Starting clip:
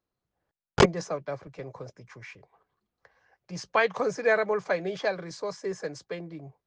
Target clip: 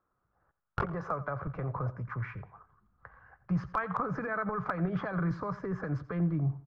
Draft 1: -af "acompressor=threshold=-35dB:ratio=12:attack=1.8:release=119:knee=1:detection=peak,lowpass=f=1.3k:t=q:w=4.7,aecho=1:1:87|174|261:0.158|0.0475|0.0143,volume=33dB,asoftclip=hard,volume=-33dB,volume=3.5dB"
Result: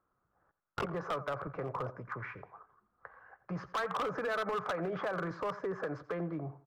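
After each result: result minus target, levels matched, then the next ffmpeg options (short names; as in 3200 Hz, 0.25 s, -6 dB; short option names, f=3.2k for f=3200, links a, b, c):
overloaded stage: distortion +24 dB; 125 Hz band -7.5 dB
-af "acompressor=threshold=-35dB:ratio=12:attack=1.8:release=119:knee=1:detection=peak,lowpass=f=1.3k:t=q:w=4.7,aecho=1:1:87|174|261:0.158|0.0475|0.0143,volume=22dB,asoftclip=hard,volume=-22dB,volume=3.5dB"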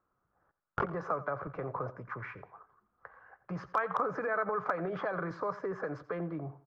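125 Hz band -9.0 dB
-af "acompressor=threshold=-35dB:ratio=12:attack=1.8:release=119:knee=1:detection=peak,asubboost=boost=9:cutoff=160,lowpass=f=1.3k:t=q:w=4.7,aecho=1:1:87|174|261:0.158|0.0475|0.0143,volume=22dB,asoftclip=hard,volume=-22dB,volume=3.5dB"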